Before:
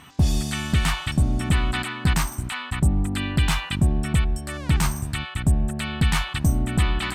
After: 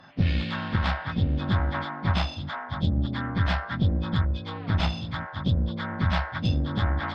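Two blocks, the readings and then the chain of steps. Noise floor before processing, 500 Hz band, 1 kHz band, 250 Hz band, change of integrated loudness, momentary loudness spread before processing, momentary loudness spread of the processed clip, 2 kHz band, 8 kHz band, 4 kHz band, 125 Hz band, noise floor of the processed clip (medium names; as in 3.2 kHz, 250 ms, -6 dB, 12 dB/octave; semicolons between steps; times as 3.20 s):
-36 dBFS, -0.5 dB, -0.5 dB, -3.0 dB, -3.5 dB, 5 LU, 4 LU, -4.0 dB, under -25 dB, -5.5 dB, -3.0 dB, -38 dBFS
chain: frequency axis rescaled in octaves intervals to 75%; Chebyshev shaper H 4 -21 dB, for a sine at -9.5 dBFS; trim -2.5 dB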